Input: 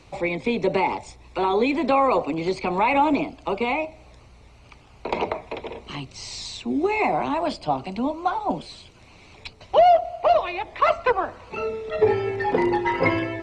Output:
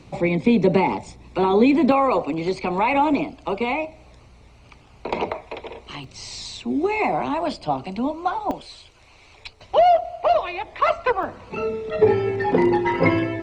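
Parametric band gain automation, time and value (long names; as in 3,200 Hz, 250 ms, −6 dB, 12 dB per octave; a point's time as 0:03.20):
parametric band 190 Hz 1.7 octaves
+11 dB
from 0:01.92 +2 dB
from 0:05.31 −5.5 dB
from 0:06.04 +1.5 dB
from 0:08.51 −10.5 dB
from 0:09.60 −1.5 dB
from 0:11.23 +8 dB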